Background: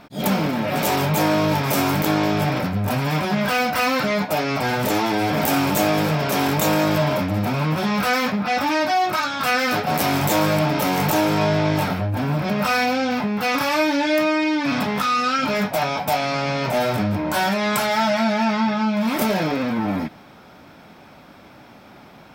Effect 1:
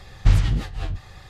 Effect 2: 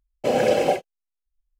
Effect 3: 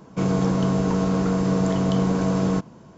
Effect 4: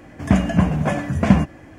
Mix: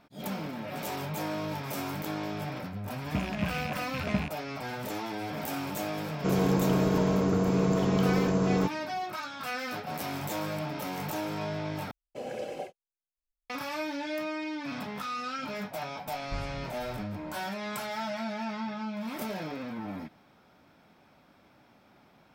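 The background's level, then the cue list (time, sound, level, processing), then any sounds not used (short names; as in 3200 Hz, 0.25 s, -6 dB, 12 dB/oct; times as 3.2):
background -15 dB
2.84 add 4 -16.5 dB + rattling part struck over -22 dBFS, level -10 dBFS
6.07 add 3 -5.5 dB + bell 400 Hz +6.5 dB 0.43 oct
11.91 replace with 2 -17.5 dB
16.06 add 1 -8 dB + resonator 170 Hz, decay 0.21 s, mix 90%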